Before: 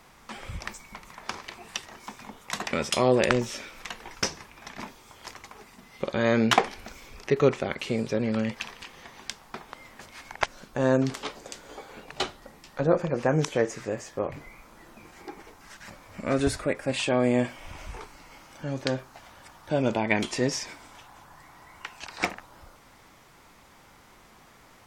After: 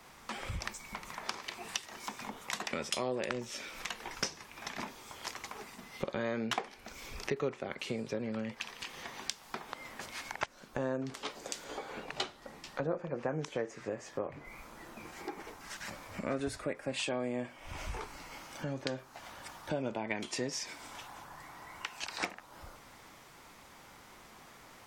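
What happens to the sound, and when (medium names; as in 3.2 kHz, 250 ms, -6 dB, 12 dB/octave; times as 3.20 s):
11.64–14.45 s: treble shelf 9.7 kHz -9.5 dB
whole clip: bass shelf 110 Hz -8 dB; compression 4:1, threshold -42 dBFS; three bands expanded up and down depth 40%; trim +5.5 dB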